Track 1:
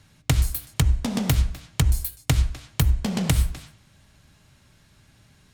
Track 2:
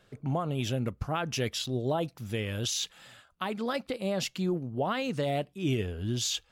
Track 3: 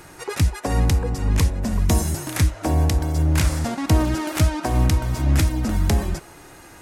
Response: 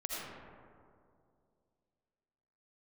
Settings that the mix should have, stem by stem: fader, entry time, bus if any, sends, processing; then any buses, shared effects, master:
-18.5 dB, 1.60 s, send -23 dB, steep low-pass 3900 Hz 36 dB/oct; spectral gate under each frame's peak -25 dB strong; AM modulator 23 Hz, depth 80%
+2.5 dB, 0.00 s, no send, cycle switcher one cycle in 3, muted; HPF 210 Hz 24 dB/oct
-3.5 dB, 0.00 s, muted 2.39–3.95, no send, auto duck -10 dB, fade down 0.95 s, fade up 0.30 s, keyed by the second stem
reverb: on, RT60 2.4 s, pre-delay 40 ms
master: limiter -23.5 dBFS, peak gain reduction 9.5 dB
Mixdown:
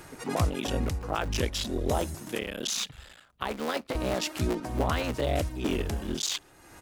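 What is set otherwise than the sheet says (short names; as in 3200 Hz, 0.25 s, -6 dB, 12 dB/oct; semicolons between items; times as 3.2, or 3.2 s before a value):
stem 1 -18.5 dB -> -26.5 dB; master: missing limiter -23.5 dBFS, peak gain reduction 9.5 dB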